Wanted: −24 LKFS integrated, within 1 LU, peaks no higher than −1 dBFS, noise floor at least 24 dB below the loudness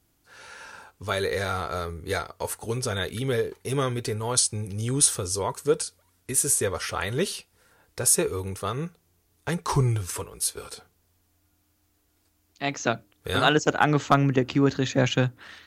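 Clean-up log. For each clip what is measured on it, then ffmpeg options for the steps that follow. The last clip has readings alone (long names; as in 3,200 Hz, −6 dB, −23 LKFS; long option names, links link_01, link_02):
integrated loudness −25.5 LKFS; sample peak −4.0 dBFS; target loudness −24.0 LKFS
→ -af "volume=1.5dB"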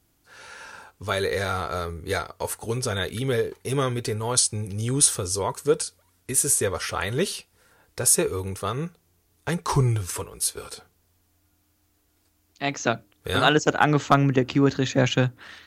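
integrated loudness −24.0 LKFS; sample peak −2.5 dBFS; background noise floor −67 dBFS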